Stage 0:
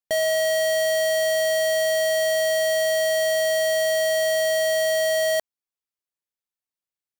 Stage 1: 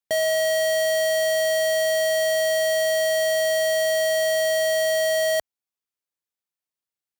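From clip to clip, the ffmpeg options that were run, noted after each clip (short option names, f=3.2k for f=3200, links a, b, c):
-af "highpass=53"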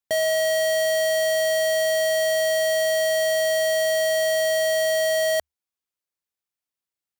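-af "equalizer=f=74:w=6.5:g=6.5"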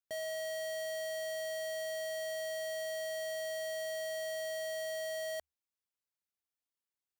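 -af "alimiter=level_in=6dB:limit=-24dB:level=0:latency=1,volume=-6dB,volume=-7dB"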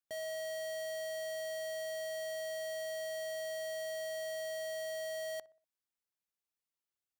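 -filter_complex "[0:a]asplit=2[a][b];[b]adelay=61,lowpass=f=1.5k:p=1,volume=-19dB,asplit=2[c][d];[d]adelay=61,lowpass=f=1.5k:p=1,volume=0.48,asplit=2[e][f];[f]adelay=61,lowpass=f=1.5k:p=1,volume=0.48,asplit=2[g][h];[h]adelay=61,lowpass=f=1.5k:p=1,volume=0.48[i];[a][c][e][g][i]amix=inputs=5:normalize=0,volume=-2dB"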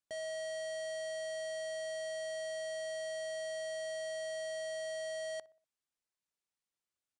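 -af "aresample=22050,aresample=44100"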